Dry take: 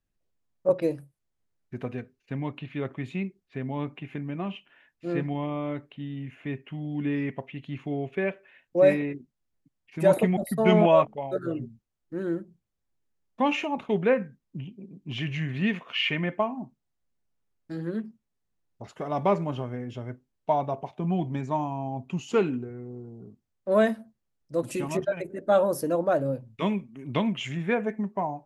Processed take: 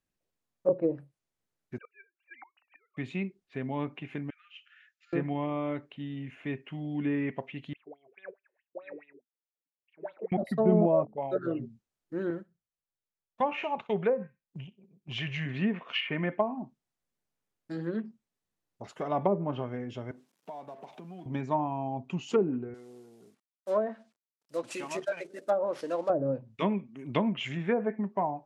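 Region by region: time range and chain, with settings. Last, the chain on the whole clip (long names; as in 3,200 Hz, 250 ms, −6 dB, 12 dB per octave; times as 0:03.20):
0:01.78–0:02.97: three sine waves on the formant tracks + high-pass filter 790 Hz 24 dB per octave + gate with flip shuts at −38 dBFS, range −27 dB
0:04.30–0:05.13: downward compressor 4 to 1, threshold −43 dBFS + linear-phase brick-wall band-pass 1,200–7,600 Hz
0:07.73–0:10.32: high-frequency loss of the air 470 metres + LFO wah 4.7 Hz 370–3,600 Hz, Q 11
0:12.30–0:15.46: noise gate −40 dBFS, range −10 dB + parametric band 280 Hz −12 dB 0.59 octaves + feedback echo with a high-pass in the loop 63 ms, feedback 20%, high-pass 1,100 Hz, level −19 dB
0:20.11–0:21.26: mu-law and A-law mismatch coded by mu + downward compressor 4 to 1, threshold −42 dBFS + high-pass filter 160 Hz 24 dB per octave
0:22.74–0:26.10: variable-slope delta modulation 64 kbit/s + high-pass filter 750 Hz 6 dB per octave
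whole clip: low-shelf EQ 140 Hz −5.5 dB; treble cut that deepens with the level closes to 490 Hz, closed at −20 dBFS; low-shelf EQ 68 Hz −7 dB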